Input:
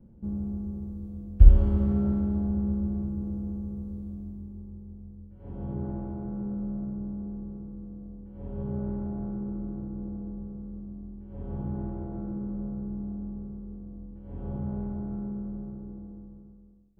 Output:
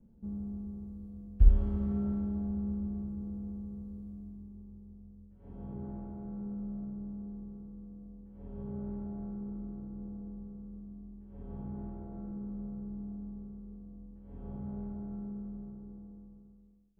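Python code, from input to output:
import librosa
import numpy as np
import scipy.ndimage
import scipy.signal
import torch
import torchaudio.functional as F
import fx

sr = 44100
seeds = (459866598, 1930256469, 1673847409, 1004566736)

y = x + 0.36 * np.pad(x, (int(4.5 * sr / 1000.0), 0))[:len(x)]
y = F.gain(torch.from_numpy(y), -8.5).numpy()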